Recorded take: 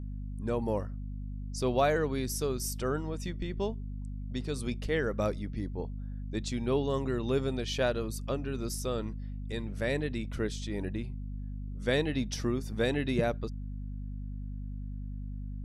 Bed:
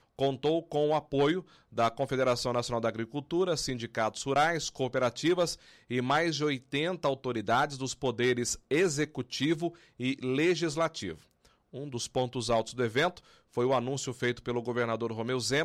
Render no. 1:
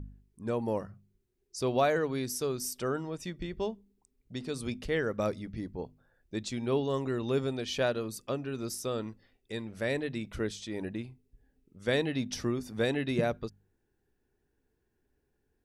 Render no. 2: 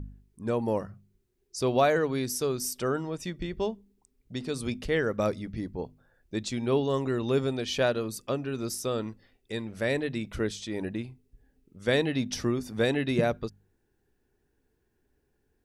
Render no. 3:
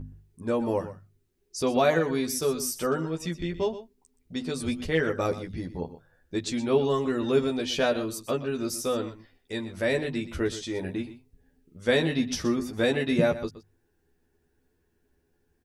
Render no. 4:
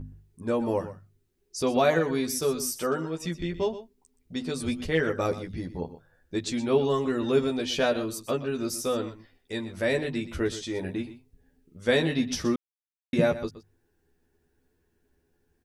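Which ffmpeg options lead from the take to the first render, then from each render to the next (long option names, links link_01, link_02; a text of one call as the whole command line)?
ffmpeg -i in.wav -af "bandreject=frequency=50:width_type=h:width=4,bandreject=frequency=100:width_type=h:width=4,bandreject=frequency=150:width_type=h:width=4,bandreject=frequency=200:width_type=h:width=4,bandreject=frequency=250:width_type=h:width=4" out.wav
ffmpeg -i in.wav -af "volume=3.5dB" out.wav
ffmpeg -i in.wav -filter_complex "[0:a]asplit=2[link_01][link_02];[link_02]adelay=12,volume=-2.5dB[link_03];[link_01][link_03]amix=inputs=2:normalize=0,aecho=1:1:122:0.2" out.wav
ffmpeg -i in.wav -filter_complex "[0:a]asettb=1/sr,asplit=3[link_01][link_02][link_03];[link_01]atrim=end=2.764[link_04];[link_02]atrim=start=2.76:end=3.24,asetpts=PTS-STARTPTS,afade=type=in:duration=0.004:curve=qsin,afade=type=out:start_time=0.476:duration=0.004:curve=qsin,lowshelf=frequency=130:gain=-8[link_05];[link_03]atrim=start=3.236[link_06];[link_04][link_05]acrossfade=duration=0.004:curve1=hsin:curve2=qsin[link_07];[link_07][link_06]acrossfade=duration=0.004:curve1=qsin:curve2=hsin,asplit=3[link_08][link_09][link_10];[link_08]atrim=end=12.56,asetpts=PTS-STARTPTS,afade=type=out:start_time=12.556:duration=0.004:curve=hsin[link_11];[link_09]atrim=start=12.56:end=13.13,asetpts=PTS-STARTPTS,volume=0[link_12];[link_10]atrim=start=13.13,asetpts=PTS-STARTPTS,afade=type=in:duration=0.004:curve=hsin[link_13];[link_11][link_12][link_13]concat=n=3:v=0:a=1" out.wav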